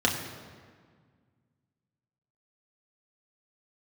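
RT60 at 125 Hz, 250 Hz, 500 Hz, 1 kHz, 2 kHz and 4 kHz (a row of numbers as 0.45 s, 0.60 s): 2.6 s, 2.3 s, 1.8 s, 1.7 s, 1.5 s, 1.2 s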